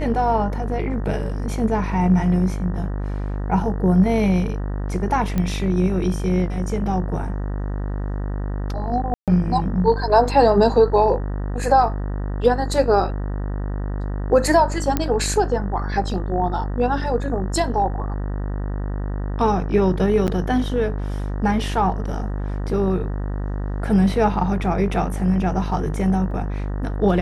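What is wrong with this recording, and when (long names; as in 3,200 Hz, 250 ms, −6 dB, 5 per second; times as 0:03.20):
mains buzz 50 Hz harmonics 38 −25 dBFS
0:05.38: click −11 dBFS
0:09.14–0:09.28: drop-out 137 ms
0:14.97: click −6 dBFS
0:20.27–0:20.28: drop-out 9.1 ms
0:26.31: drop-out 2.1 ms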